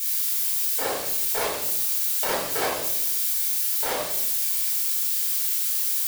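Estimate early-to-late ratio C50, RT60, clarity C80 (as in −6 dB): 3.0 dB, 0.85 s, 6.0 dB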